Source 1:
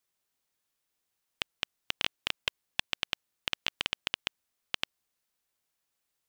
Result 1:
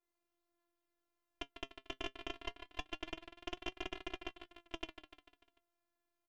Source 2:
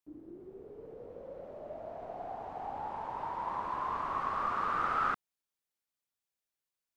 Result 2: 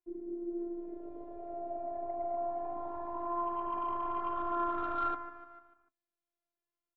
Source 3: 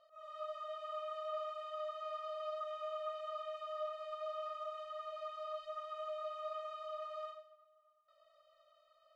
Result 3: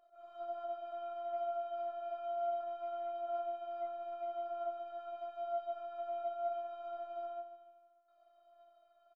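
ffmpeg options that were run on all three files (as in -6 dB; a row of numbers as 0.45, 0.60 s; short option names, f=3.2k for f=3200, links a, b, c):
-af "tiltshelf=f=1.4k:g=9.5,afftfilt=real='hypot(re,im)*cos(PI*b)':imag='0':win_size=512:overlap=0.75,aecho=1:1:148|296|444|592|740:0.2|0.102|0.0519|0.0265|0.0135,asoftclip=type=tanh:threshold=-23.5dB,flanger=delay=5.3:depth=2.2:regen=62:speed=0.25:shape=sinusoidal,adynamicequalizer=threshold=0.00126:dfrequency=3000:dqfactor=0.7:tfrequency=3000:tqfactor=0.7:attack=5:release=100:ratio=0.375:range=2.5:mode=cutabove:tftype=highshelf,volume=4dB"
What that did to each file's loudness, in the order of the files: -11.5, -1.0, +2.5 LU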